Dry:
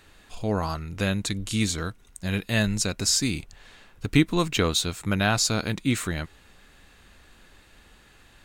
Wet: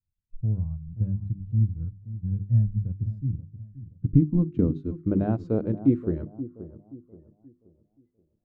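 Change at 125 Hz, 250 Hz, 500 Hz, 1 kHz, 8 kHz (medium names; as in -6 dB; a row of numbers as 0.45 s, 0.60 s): +4.0 dB, +0.5 dB, -3.0 dB, -13.5 dB, under -40 dB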